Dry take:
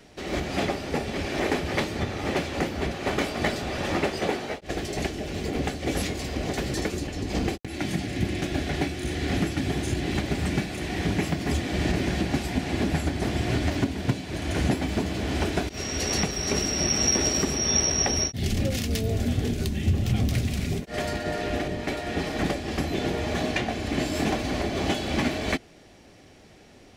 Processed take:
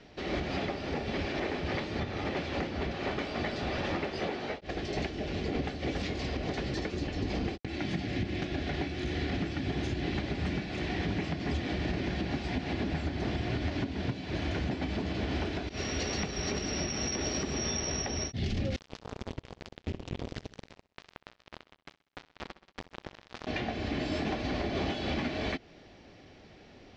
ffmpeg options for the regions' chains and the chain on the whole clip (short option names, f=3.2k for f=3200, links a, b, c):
-filter_complex "[0:a]asettb=1/sr,asplit=3[a][b][c];[a]atrim=end=18.764[d];[b]atrim=start=18.76:end=23.47,asetpts=PTS-STARTPTS,afade=t=in:d=0.004:c=qsin,afade=t=out:st=4.706:d=0.004:c=qsin,equalizer=f=7.4k:t=o:w=0.22:g=7.5,acrusher=bits=2:mix=0:aa=0.5,aecho=1:1:64|128|192|256:0.106|0.0498|0.0234|0.011,atrim=end_sample=207711[e];[c]atrim=start=23.466[f];[d][e]acrossfade=d=0.004:c1=hsin:c2=qsin[g];[g][f]acrossfade=d=0.004:c1=qsin:c2=hsin,lowpass=f=5.1k:w=0.5412,lowpass=f=5.1k:w=1.3066,alimiter=limit=-21dB:level=0:latency=1:release=176,volume=-2dB"